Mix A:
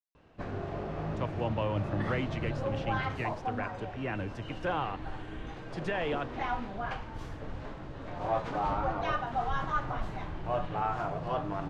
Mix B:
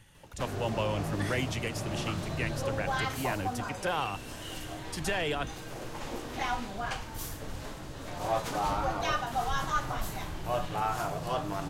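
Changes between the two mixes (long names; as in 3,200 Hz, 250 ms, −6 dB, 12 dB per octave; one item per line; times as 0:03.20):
speech: entry −0.80 s
master: remove Bessel low-pass filter 1,900 Hz, order 2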